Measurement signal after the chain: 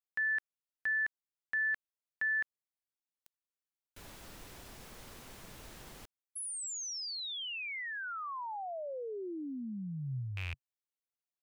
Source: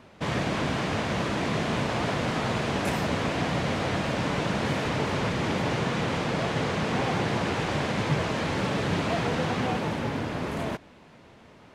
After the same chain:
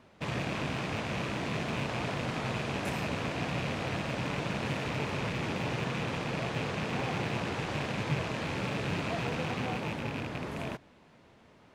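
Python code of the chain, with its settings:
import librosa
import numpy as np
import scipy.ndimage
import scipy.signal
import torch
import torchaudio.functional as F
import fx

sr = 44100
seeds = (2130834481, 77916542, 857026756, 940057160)

y = fx.rattle_buzz(x, sr, strikes_db=-30.0, level_db=-21.0)
y = fx.dynamic_eq(y, sr, hz=130.0, q=5.2, threshold_db=-49.0, ratio=4.0, max_db=4)
y = y * librosa.db_to_amplitude(-7.0)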